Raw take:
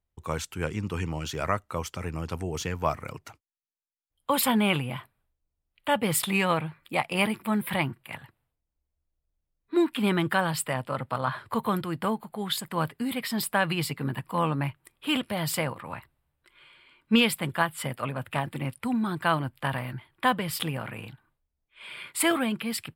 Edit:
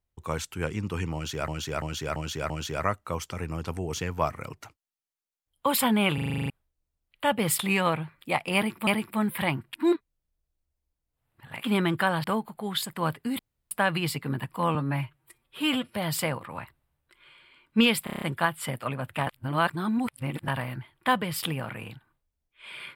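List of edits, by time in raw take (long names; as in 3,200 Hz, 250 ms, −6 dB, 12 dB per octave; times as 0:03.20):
0:01.14–0:01.48: repeat, 5 plays
0:04.78: stutter in place 0.04 s, 9 plays
0:07.19–0:07.51: repeat, 2 plays
0:08.05–0:09.96: reverse
0:10.56–0:11.99: remove
0:13.14–0:13.46: fill with room tone
0:14.50–0:15.30: time-stretch 1.5×
0:17.39: stutter 0.03 s, 7 plays
0:18.44–0:19.65: reverse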